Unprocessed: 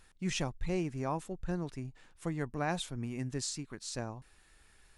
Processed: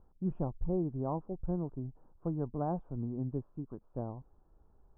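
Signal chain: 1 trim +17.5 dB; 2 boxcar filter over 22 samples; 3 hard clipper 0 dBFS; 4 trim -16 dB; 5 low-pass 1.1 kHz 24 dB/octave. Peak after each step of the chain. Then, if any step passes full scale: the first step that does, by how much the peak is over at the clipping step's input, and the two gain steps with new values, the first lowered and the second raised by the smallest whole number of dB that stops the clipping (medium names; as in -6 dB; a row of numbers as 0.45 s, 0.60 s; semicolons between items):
-3.0 dBFS, -5.5 dBFS, -5.5 dBFS, -21.5 dBFS, -22.5 dBFS; nothing clips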